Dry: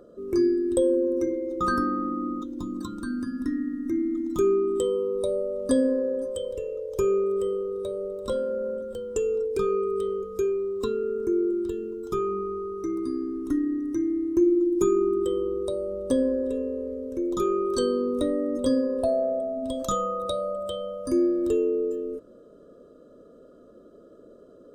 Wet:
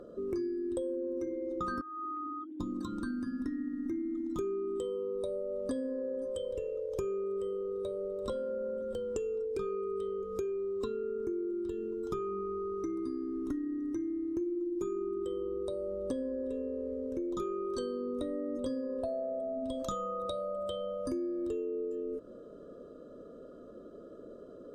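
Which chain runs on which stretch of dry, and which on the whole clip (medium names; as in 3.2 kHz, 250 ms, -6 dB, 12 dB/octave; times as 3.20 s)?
1.81–2.60 s: formants replaced by sine waves + high-pass 600 Hz 6 dB/octave + compression 2:1, threshold -42 dBFS
whole clip: compression, threshold -35 dBFS; treble shelf 7.8 kHz -10.5 dB; trim +1.5 dB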